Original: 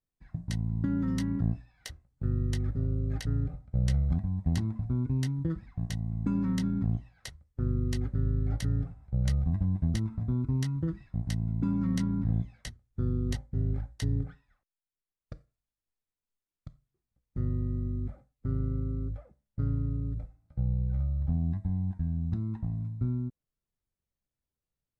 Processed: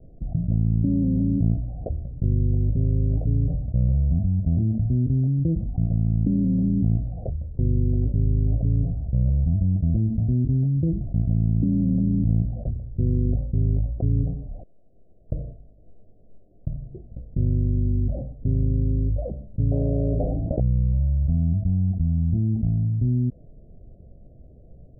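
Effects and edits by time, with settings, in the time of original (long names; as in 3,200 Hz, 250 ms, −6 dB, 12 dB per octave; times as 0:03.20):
0:19.71–0:20.60: every bin compressed towards the loudest bin 4 to 1
whole clip: Butterworth low-pass 700 Hz 96 dB per octave; parametric band 360 Hz −3 dB 2 octaves; envelope flattener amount 70%; level +5.5 dB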